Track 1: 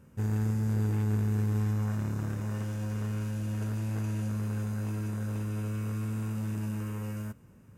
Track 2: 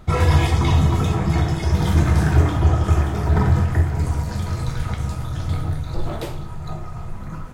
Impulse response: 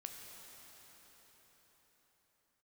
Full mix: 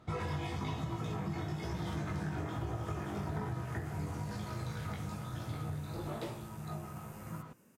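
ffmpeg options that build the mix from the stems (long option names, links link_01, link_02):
-filter_complex "[0:a]highpass=230,highshelf=frequency=4500:gain=9,acompressor=threshold=-46dB:ratio=6,adelay=100,volume=-4dB[link_01];[1:a]flanger=delay=17.5:depth=3:speed=1.1,highpass=110,highshelf=frequency=9000:gain=-10.5,volume=-7dB[link_02];[link_01][link_02]amix=inputs=2:normalize=0,acompressor=threshold=-34dB:ratio=6"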